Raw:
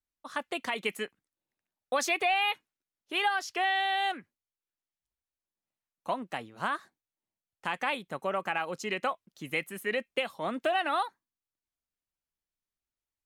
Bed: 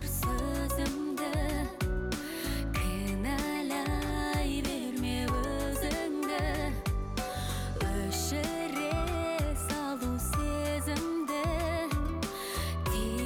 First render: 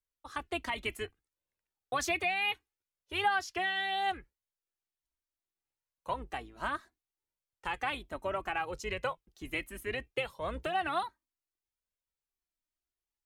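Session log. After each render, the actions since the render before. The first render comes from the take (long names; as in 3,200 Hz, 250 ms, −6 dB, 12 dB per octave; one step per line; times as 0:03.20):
sub-octave generator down 2 octaves, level −3 dB
flanger 0.67 Hz, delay 1.8 ms, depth 1.5 ms, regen +20%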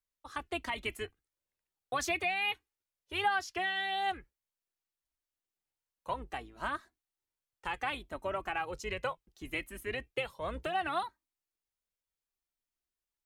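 level −1 dB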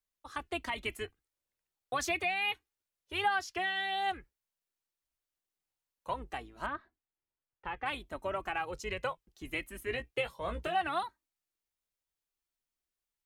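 0:06.66–0:07.86: high-frequency loss of the air 400 metres
0:09.85–0:10.82: double-tracking delay 17 ms −7 dB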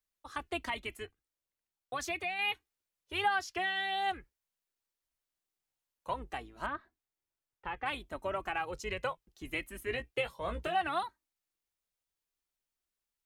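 0:00.78–0:02.39: clip gain −4 dB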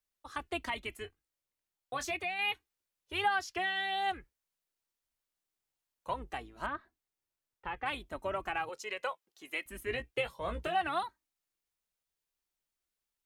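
0:01.02–0:02.17: double-tracking delay 22 ms −10 dB
0:08.69–0:09.66: high-pass filter 470 Hz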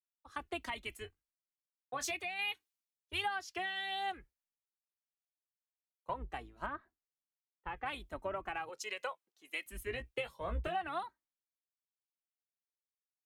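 downward compressor 4 to 1, threshold −37 dBFS, peak gain reduction 10.5 dB
multiband upward and downward expander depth 100%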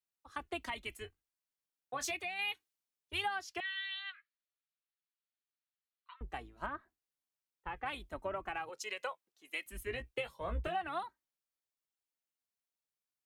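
0:03.60–0:06.21: Chebyshev band-pass filter 1,200–4,400 Hz, order 4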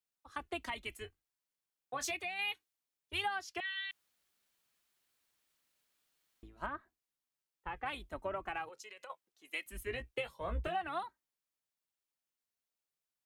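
0:03.91–0:06.43: fill with room tone
0:08.68–0:09.10: downward compressor, threshold −48 dBFS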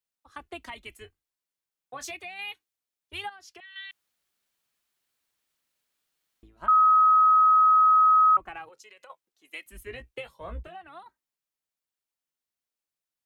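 0:03.29–0:03.76: downward compressor 12 to 1, threshold −44 dBFS
0:06.68–0:08.37: beep over 1,270 Hz −15 dBFS
0:10.63–0:11.06: clip gain −7.5 dB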